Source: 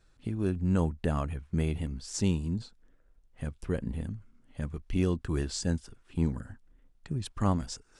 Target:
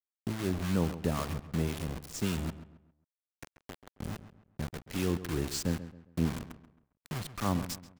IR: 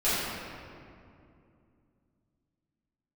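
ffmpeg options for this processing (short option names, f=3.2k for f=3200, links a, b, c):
-filter_complex "[0:a]acrossover=split=100|630|1900[a][b][c][d];[a]alimiter=level_in=14dB:limit=-24dB:level=0:latency=1:release=36,volume=-14dB[e];[e][b][c][d]amix=inputs=4:normalize=0,asplit=3[f][g][h];[f]afade=t=out:st=2.49:d=0.02[i];[g]acompressor=threshold=-43dB:ratio=6,afade=t=in:st=2.49:d=0.02,afade=t=out:st=4:d=0.02[j];[h]afade=t=in:st=4:d=0.02[k];[i][j][k]amix=inputs=3:normalize=0,acrusher=bits=5:mix=0:aa=0.000001,acrossover=split=690[l][m];[l]aeval=exprs='val(0)*(1-0.5/2+0.5/2*cos(2*PI*3.7*n/s))':c=same[n];[m]aeval=exprs='val(0)*(1-0.5/2-0.5/2*cos(2*PI*3.7*n/s))':c=same[o];[n][o]amix=inputs=2:normalize=0,asplit=2[p][q];[q]adelay=135,lowpass=f=2.7k:p=1,volume=-13dB,asplit=2[r][s];[s]adelay=135,lowpass=f=2.7k:p=1,volume=0.36,asplit=2[t][u];[u]adelay=135,lowpass=f=2.7k:p=1,volume=0.36,asplit=2[v][w];[w]adelay=135,lowpass=f=2.7k:p=1,volume=0.36[x];[p][r][t][v][x]amix=inputs=5:normalize=0"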